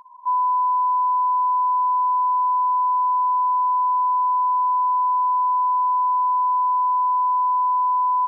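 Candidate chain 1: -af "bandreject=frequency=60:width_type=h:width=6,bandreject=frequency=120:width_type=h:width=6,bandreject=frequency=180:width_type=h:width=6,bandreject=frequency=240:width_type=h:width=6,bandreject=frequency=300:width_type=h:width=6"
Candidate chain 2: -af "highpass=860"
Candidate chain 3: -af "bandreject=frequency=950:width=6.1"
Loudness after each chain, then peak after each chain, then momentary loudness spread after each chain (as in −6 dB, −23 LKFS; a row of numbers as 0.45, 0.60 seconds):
−19.5, −21.5, −25.0 LKFS; −16.5, −18.0, −22.0 dBFS; 0, 0, 0 LU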